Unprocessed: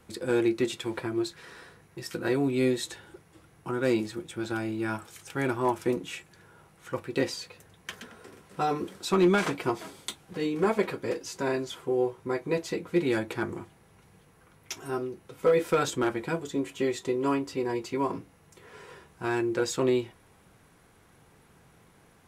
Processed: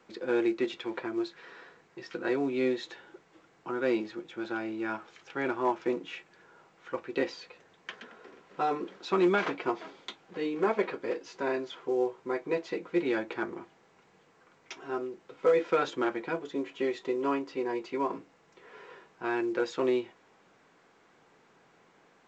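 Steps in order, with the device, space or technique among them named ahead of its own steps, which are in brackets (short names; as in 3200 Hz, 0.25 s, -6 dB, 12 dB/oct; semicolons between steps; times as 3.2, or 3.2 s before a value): telephone (BPF 280–3300 Hz; gain -1 dB; A-law 128 kbps 16000 Hz)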